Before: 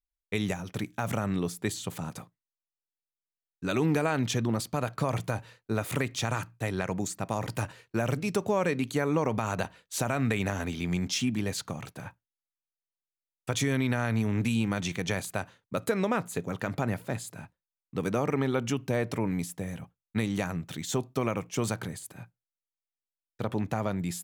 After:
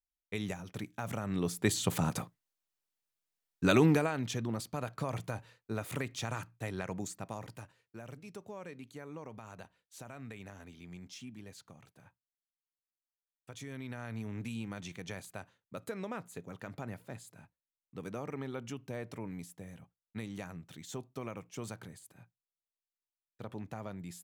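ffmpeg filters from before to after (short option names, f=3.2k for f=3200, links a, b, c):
-af "volume=11.5dB,afade=t=in:st=1.26:d=0.69:silence=0.237137,afade=t=out:st=3.64:d=0.48:silence=0.237137,afade=t=out:st=7.08:d=0.59:silence=0.266073,afade=t=in:st=13.54:d=0.72:silence=0.473151"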